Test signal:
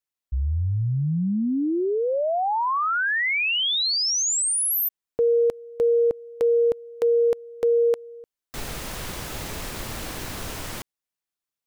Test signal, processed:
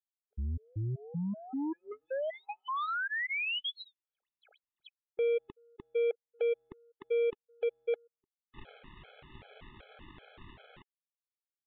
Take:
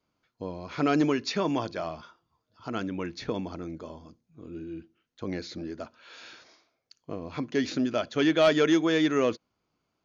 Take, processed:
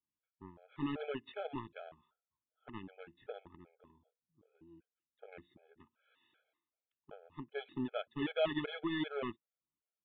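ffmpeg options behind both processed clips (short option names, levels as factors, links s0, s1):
-af "aeval=exprs='0.2*(cos(1*acos(clip(val(0)/0.2,-1,1)))-cos(1*PI/2))+0.00501*(cos(3*acos(clip(val(0)/0.2,-1,1)))-cos(3*PI/2))+0.02*(cos(7*acos(clip(val(0)/0.2,-1,1)))-cos(7*PI/2))':c=same,aresample=8000,aresample=44100,afftfilt=real='re*gt(sin(2*PI*2.6*pts/sr)*(1-2*mod(floor(b*sr/1024/430),2)),0)':imag='im*gt(sin(2*PI*2.6*pts/sr)*(1-2*mod(floor(b*sr/1024/430),2)),0)':win_size=1024:overlap=0.75,volume=0.355"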